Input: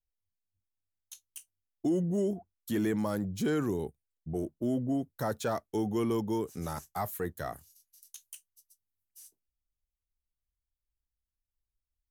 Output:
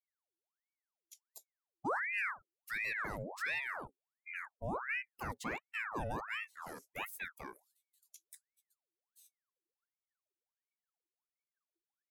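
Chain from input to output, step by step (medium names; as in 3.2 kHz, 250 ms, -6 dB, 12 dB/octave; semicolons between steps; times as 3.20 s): expander on every frequency bin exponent 1.5; ring modulator with a swept carrier 1.3 kHz, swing 75%, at 1.4 Hz; trim -3.5 dB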